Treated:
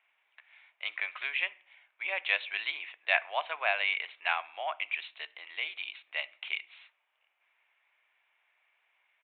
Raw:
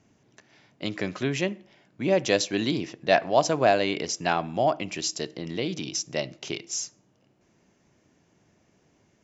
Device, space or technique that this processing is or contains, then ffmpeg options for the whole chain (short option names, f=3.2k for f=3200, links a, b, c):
musical greeting card: -af "aresample=8000,aresample=44100,highpass=f=880:w=0.5412,highpass=f=880:w=1.3066,equalizer=f=2.3k:t=o:w=0.49:g=10.5,volume=-4dB"